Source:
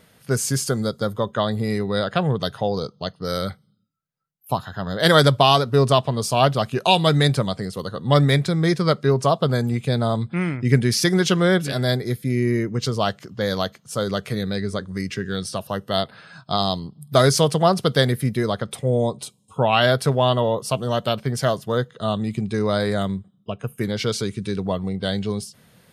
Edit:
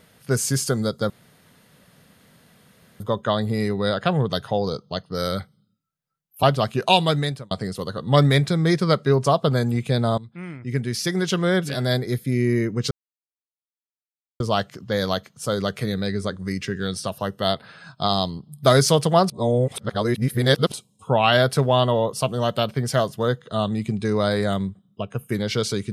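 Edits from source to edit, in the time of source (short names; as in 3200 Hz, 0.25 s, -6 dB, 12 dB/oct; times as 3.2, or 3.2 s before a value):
1.1 insert room tone 1.90 s
4.53–6.41 cut
6.91–7.49 fade out
10.16–12.12 fade in, from -17 dB
12.89 insert silence 1.49 s
17.79–19.21 reverse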